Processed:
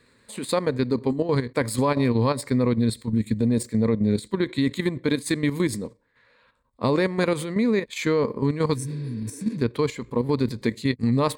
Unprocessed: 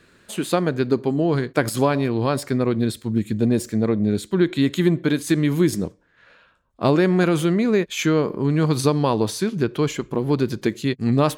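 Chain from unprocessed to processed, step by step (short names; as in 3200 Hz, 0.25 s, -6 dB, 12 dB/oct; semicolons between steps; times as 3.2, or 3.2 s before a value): spectral repair 8.77–9.54, 240–5200 Hz after; ripple EQ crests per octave 0.97, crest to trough 9 dB; level quantiser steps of 10 dB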